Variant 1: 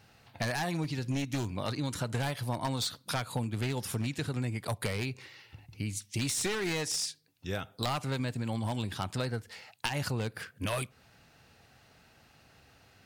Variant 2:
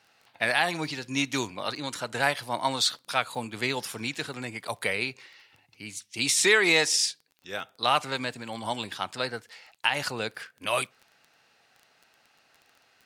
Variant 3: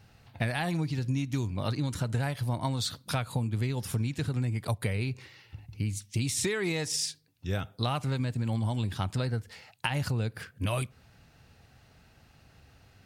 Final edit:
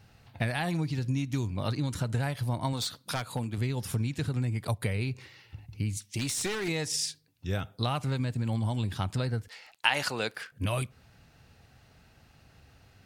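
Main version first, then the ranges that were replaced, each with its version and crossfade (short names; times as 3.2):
3
2.73–3.58 from 1
5.97–6.68 from 1
9.48–10.52 from 2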